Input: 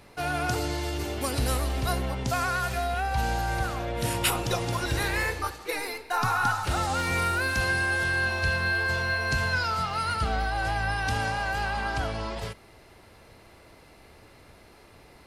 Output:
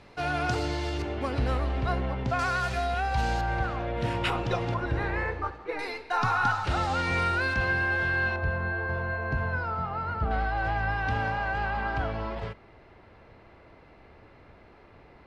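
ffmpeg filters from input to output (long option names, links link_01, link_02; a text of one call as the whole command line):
ffmpeg -i in.wav -af "asetnsamples=nb_out_samples=441:pad=0,asendcmd='1.02 lowpass f 2400;2.39 lowpass f 5900;3.41 lowpass f 2700;4.74 lowpass f 1600;5.79 lowpass f 4200;7.54 lowpass f 2600;8.36 lowpass f 1200;10.31 lowpass f 2300',lowpass=5000" out.wav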